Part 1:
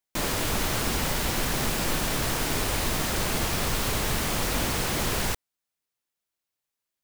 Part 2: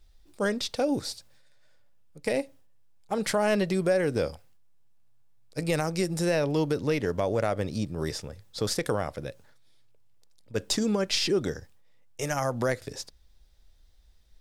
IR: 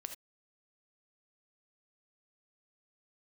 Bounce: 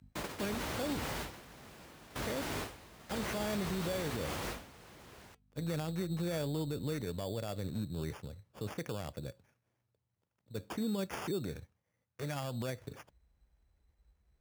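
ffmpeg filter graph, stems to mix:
-filter_complex "[0:a]highshelf=frequency=4100:gain=-8,flanger=delay=1.3:depth=2.3:regen=-85:speed=0.64:shape=triangular,aeval=exprs='val(0)+0.00501*(sin(2*PI*50*n/s)+sin(2*PI*2*50*n/s)/2+sin(2*PI*3*50*n/s)/3+sin(2*PI*4*50*n/s)/4+sin(2*PI*5*50*n/s)/5)':channel_layout=same,volume=-3.5dB[link_01];[1:a]bass=frequency=250:gain=9,treble=frequency=4000:gain=-8,acrusher=samples=11:mix=1:aa=0.000001,volume=-10dB,asplit=3[link_02][link_03][link_04];[link_03]volume=-20.5dB[link_05];[link_04]apad=whole_len=310196[link_06];[link_01][link_06]sidechaingate=range=-33dB:threshold=-56dB:ratio=16:detection=peak[link_07];[2:a]atrim=start_sample=2205[link_08];[link_05][link_08]afir=irnorm=-1:irlink=0[link_09];[link_07][link_02][link_09]amix=inputs=3:normalize=0,highpass=frequency=46:width=0.5412,highpass=frequency=46:width=1.3066,lowshelf=frequency=130:gain=-4.5,alimiter=level_in=3.5dB:limit=-24dB:level=0:latency=1:release=43,volume=-3.5dB"

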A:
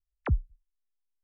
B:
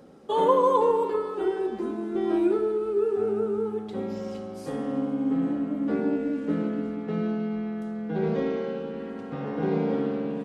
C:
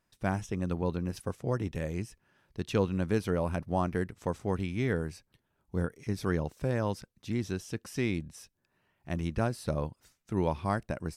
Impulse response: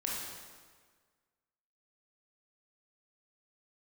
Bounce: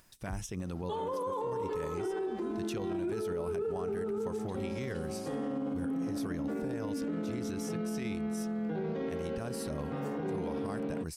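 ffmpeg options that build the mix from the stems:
-filter_complex "[0:a]volume=1.5dB[link_01];[1:a]adelay=600,volume=-0.5dB[link_02];[2:a]highshelf=frequency=4400:gain=10.5,volume=-2.5dB,asplit=2[link_03][link_04];[link_04]apad=whole_len=54654[link_05];[link_01][link_05]sidechaincompress=threshold=-35dB:ratio=8:attack=16:release=390[link_06];[link_06][link_02][link_03]amix=inputs=3:normalize=0,acompressor=mode=upward:threshold=-53dB:ratio=2.5,alimiter=level_in=4dB:limit=-24dB:level=0:latency=1:release=45,volume=-4dB"

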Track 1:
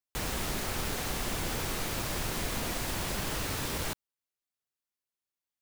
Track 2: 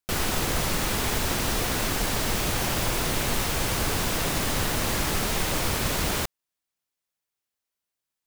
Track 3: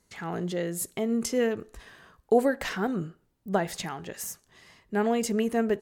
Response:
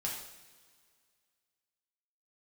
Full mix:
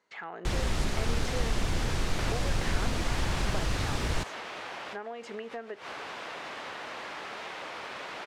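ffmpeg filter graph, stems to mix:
-filter_complex "[0:a]lowpass=6700,adelay=300,volume=0.5dB[link_01];[1:a]adelay=2100,volume=-2dB[link_02];[2:a]volume=2.5dB,asplit=2[link_03][link_04];[link_04]apad=whole_len=456952[link_05];[link_02][link_05]sidechaincompress=threshold=-35dB:ratio=6:attack=25:release=117[link_06];[link_06][link_03]amix=inputs=2:normalize=0,highpass=590,lowpass=2800,acompressor=threshold=-37dB:ratio=6,volume=0dB[link_07];[link_01][link_07]amix=inputs=2:normalize=0,lowshelf=frequency=120:gain=10"

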